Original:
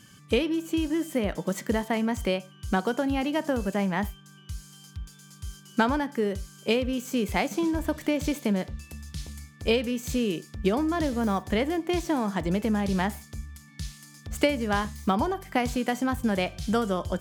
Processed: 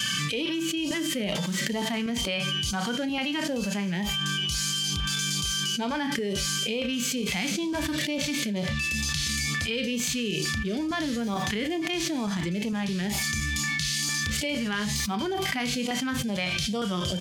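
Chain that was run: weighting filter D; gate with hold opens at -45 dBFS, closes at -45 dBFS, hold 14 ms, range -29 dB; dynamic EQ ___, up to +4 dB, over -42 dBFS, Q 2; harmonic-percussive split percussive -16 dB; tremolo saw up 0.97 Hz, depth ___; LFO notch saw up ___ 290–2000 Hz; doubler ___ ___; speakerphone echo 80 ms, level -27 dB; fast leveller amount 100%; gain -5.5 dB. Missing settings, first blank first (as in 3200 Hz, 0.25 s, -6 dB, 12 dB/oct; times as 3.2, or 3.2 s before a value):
160 Hz, 50%, 2.2 Hz, 34 ms, -12.5 dB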